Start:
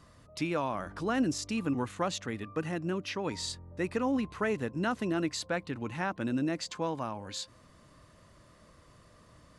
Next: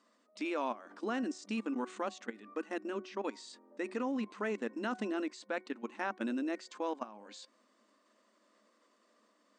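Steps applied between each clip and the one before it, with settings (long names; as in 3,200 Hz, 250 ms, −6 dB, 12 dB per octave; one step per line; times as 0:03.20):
output level in coarse steps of 17 dB
brick-wall band-pass 200–9,100 Hz
hum removal 371.1 Hz, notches 6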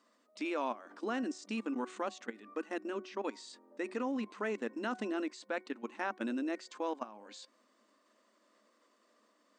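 parametric band 180 Hz −10.5 dB 0.23 octaves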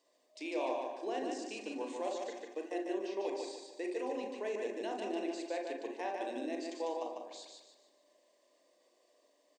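phaser with its sweep stopped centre 550 Hz, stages 4
repeating echo 148 ms, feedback 39%, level −4 dB
on a send at −3 dB: convolution reverb RT60 0.30 s, pre-delay 34 ms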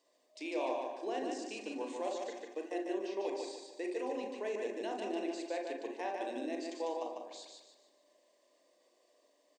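no processing that can be heard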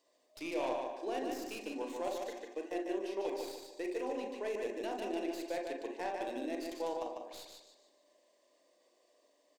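stylus tracing distortion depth 0.072 ms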